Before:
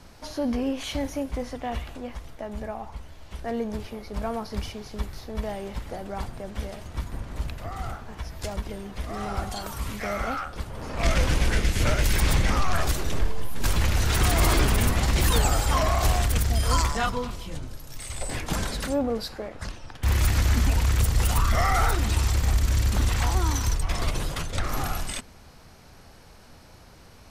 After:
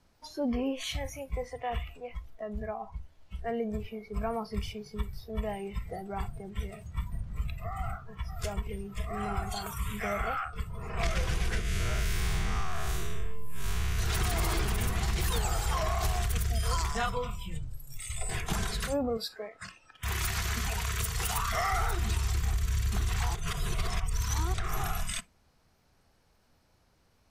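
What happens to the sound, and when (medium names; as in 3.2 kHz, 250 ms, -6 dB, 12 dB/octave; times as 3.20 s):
7.75–8.50 s: echo throw 530 ms, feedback 40%, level -9.5 dB
11.61–13.99 s: spectral blur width 162 ms
19.17–21.73 s: bass shelf 200 Hz -11.5 dB
23.35–24.54 s: reverse
whole clip: spectral noise reduction 16 dB; compression, threshold -24 dBFS; trim -1.5 dB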